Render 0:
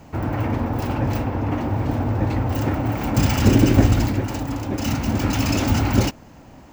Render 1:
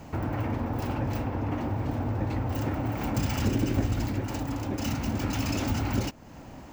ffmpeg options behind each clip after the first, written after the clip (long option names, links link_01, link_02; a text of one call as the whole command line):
ffmpeg -i in.wav -af "acompressor=threshold=-32dB:ratio=2" out.wav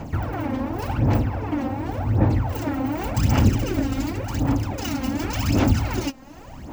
ffmpeg -i in.wav -af "aphaser=in_gain=1:out_gain=1:delay=3.8:decay=0.67:speed=0.89:type=sinusoidal,volume=2dB" out.wav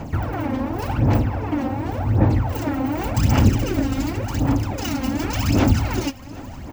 ffmpeg -i in.wav -af "aecho=1:1:766:0.0944,volume=2dB" out.wav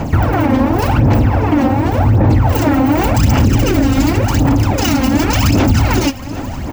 ffmpeg -i in.wav -af "alimiter=level_in=14.5dB:limit=-1dB:release=50:level=0:latency=1,volume=-2.5dB" out.wav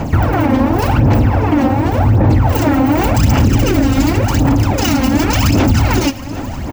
ffmpeg -i in.wav -af "aecho=1:1:111:0.0841" out.wav